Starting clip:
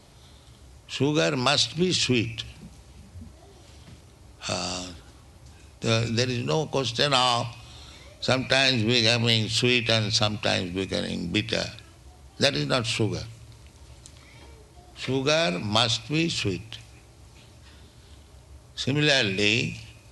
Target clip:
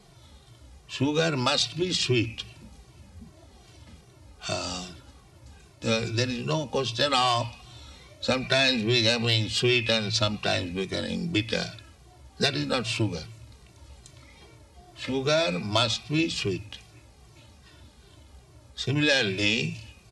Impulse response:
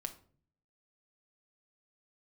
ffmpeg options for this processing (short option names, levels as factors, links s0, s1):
-filter_complex "[0:a]asplit=2[s0][s1];[1:a]atrim=start_sample=2205,lowpass=6200[s2];[s1][s2]afir=irnorm=-1:irlink=0,volume=0.266[s3];[s0][s3]amix=inputs=2:normalize=0,asplit=2[s4][s5];[s5]adelay=2.1,afreqshift=-2.5[s6];[s4][s6]amix=inputs=2:normalize=1"